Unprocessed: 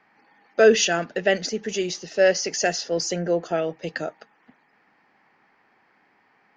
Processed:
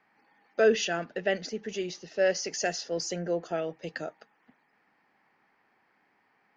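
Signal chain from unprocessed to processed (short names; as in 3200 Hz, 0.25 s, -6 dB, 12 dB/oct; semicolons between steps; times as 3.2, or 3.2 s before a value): 0.6–2.3 air absorption 77 m; gain -7 dB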